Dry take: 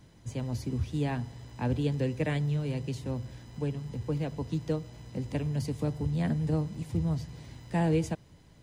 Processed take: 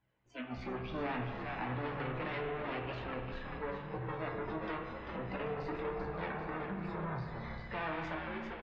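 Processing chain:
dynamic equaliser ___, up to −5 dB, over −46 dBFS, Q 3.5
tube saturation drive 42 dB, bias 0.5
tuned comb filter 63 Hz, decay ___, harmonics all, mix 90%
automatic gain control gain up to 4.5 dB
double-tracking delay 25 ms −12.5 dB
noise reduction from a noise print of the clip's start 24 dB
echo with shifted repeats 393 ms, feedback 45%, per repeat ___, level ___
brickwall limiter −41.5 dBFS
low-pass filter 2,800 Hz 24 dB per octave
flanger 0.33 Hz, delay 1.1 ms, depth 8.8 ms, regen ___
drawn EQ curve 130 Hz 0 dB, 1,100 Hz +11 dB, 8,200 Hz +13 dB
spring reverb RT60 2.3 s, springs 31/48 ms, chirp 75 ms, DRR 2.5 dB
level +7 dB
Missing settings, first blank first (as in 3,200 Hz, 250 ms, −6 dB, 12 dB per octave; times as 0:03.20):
110 Hz, 0.16 s, −100 Hz, −7.5 dB, +43%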